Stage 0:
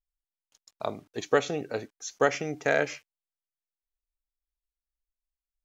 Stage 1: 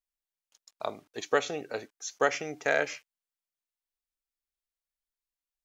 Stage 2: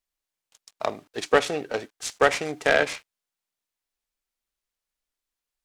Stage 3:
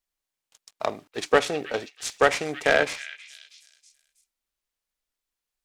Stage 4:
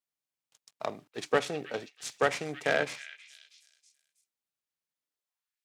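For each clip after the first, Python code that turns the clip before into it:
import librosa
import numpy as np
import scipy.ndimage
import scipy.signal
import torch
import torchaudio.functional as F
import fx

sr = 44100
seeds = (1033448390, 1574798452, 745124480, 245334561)

y1 = fx.low_shelf(x, sr, hz=290.0, db=-11.5)
y2 = fx.noise_mod_delay(y1, sr, seeds[0], noise_hz=1200.0, depth_ms=0.032)
y2 = F.gain(torch.from_numpy(y2), 6.5).numpy()
y3 = fx.echo_stepped(y2, sr, ms=321, hz=2700.0, octaves=0.7, feedback_pct=70, wet_db=-10.5)
y4 = fx.filter_sweep_highpass(y3, sr, from_hz=130.0, to_hz=2300.0, start_s=4.9, end_s=5.62, q=1.8)
y4 = F.gain(torch.from_numpy(y4), -7.5).numpy()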